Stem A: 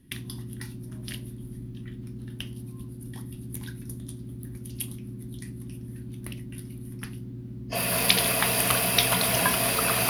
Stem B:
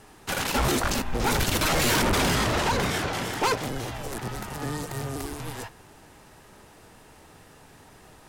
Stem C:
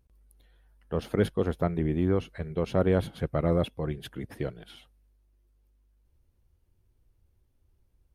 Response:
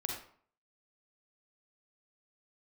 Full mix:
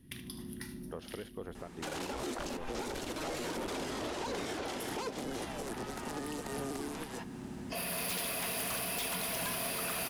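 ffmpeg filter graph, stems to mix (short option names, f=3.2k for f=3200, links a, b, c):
-filter_complex "[0:a]bandreject=f=60:t=h:w=6,bandreject=f=120:t=h:w=6,aeval=exprs='0.106*(abs(mod(val(0)/0.106+3,4)-2)-1)':c=same,volume=-4dB,asplit=3[a][b][c];[b]volume=-11dB[d];[c]volume=-11.5dB[e];[1:a]lowshelf=f=210:t=q:w=1.5:g=-9.5,acrossover=split=900|2600[f][g][h];[f]acompressor=threshold=-29dB:ratio=4[i];[g]acompressor=threshold=-42dB:ratio=4[j];[h]acompressor=threshold=-37dB:ratio=4[k];[i][j][k]amix=inputs=3:normalize=0,lowpass=11k,adelay=1550,volume=-1.5dB[l];[2:a]lowshelf=f=240:g=-11,acompressor=threshold=-33dB:ratio=6,volume=-5dB,asplit=2[m][n];[n]apad=whole_len=445148[o];[a][o]sidechaincompress=threshold=-60dB:ratio=8:attack=5.1:release=186[p];[3:a]atrim=start_sample=2205[q];[d][q]afir=irnorm=-1:irlink=0[r];[e]aecho=0:1:75|150|225|300|375:1|0.35|0.122|0.0429|0.015[s];[p][l][m][r][s]amix=inputs=5:normalize=0,alimiter=level_in=4.5dB:limit=-24dB:level=0:latency=1:release=360,volume=-4.5dB"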